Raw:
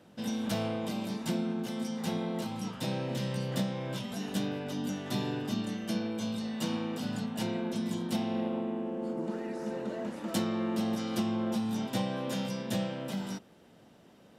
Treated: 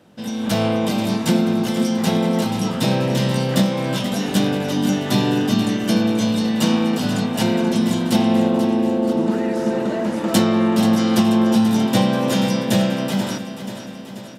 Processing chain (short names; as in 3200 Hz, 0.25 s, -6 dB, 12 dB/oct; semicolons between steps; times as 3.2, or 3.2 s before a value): AGC gain up to 9 dB; feedback echo 0.484 s, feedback 60%, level -11 dB; gain +5.5 dB